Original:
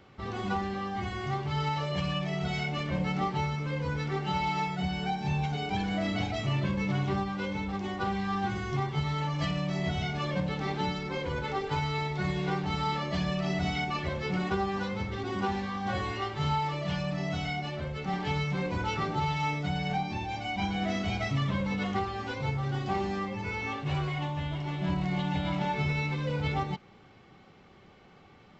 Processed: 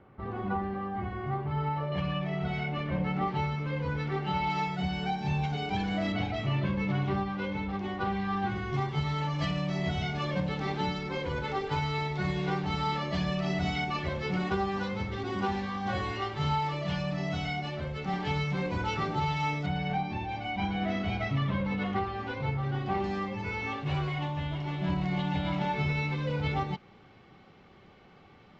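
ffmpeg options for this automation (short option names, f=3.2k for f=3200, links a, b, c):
-af "asetnsamples=n=441:p=0,asendcmd='1.92 lowpass f 2500;3.28 lowpass f 3700;4.5 lowpass f 6000;6.12 lowpass f 3600;8.74 lowpass f 6700;19.66 lowpass f 3200;23.04 lowpass f 5500',lowpass=1.5k"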